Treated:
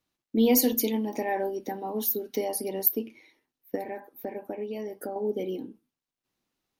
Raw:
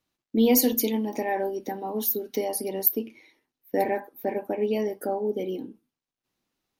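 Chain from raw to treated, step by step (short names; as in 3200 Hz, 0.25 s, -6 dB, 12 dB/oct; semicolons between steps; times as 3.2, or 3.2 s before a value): 3.75–5.16 compressor 6:1, threshold -30 dBFS, peak gain reduction 11 dB; gain -1.5 dB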